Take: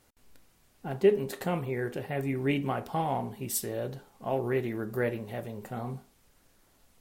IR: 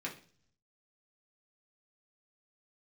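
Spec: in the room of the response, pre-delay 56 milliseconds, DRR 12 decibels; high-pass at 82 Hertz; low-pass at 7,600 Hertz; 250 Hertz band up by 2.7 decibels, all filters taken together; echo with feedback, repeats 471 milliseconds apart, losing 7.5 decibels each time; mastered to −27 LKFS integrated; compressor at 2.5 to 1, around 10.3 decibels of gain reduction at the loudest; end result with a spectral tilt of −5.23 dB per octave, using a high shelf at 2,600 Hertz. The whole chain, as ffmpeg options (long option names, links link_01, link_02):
-filter_complex "[0:a]highpass=82,lowpass=7600,equalizer=frequency=250:width_type=o:gain=3.5,highshelf=frequency=2600:gain=6.5,acompressor=threshold=-31dB:ratio=2.5,aecho=1:1:471|942|1413|1884|2355:0.422|0.177|0.0744|0.0312|0.0131,asplit=2[link_01][link_02];[1:a]atrim=start_sample=2205,adelay=56[link_03];[link_02][link_03]afir=irnorm=-1:irlink=0,volume=-13.5dB[link_04];[link_01][link_04]amix=inputs=2:normalize=0,volume=7.5dB"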